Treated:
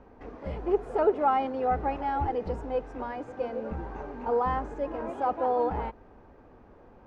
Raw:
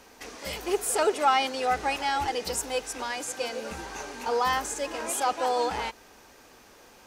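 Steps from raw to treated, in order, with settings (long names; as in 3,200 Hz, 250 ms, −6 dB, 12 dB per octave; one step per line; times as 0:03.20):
low-pass filter 1,000 Hz 12 dB per octave
low-shelf EQ 190 Hz +10.5 dB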